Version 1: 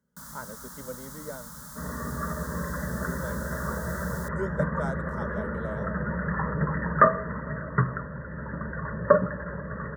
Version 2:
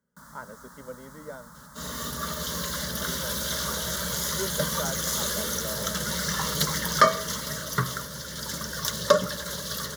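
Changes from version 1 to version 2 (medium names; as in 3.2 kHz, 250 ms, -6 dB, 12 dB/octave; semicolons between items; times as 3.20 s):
first sound: add treble shelf 3.8 kHz -11 dB; second sound: remove brick-wall FIR low-pass 2 kHz; master: add bass shelf 260 Hz -6 dB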